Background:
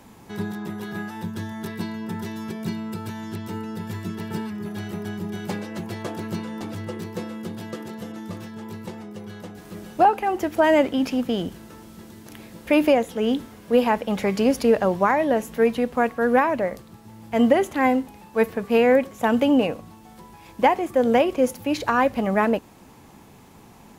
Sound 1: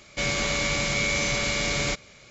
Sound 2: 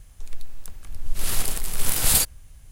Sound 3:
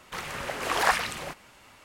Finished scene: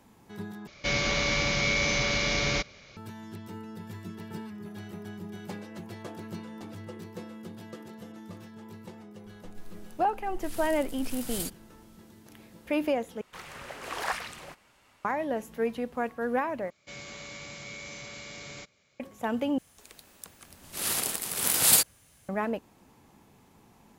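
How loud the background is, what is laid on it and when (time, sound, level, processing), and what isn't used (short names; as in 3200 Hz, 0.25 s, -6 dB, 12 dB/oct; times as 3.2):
background -10 dB
0.67 replace with 1 -1 dB + steep low-pass 6400 Hz 72 dB/oct
9.25 add 2 -16.5 dB
13.21 replace with 3 -8.5 dB
16.7 replace with 1 -17 dB + HPF 77 Hz
19.58 replace with 2 -0.5 dB + HPF 190 Hz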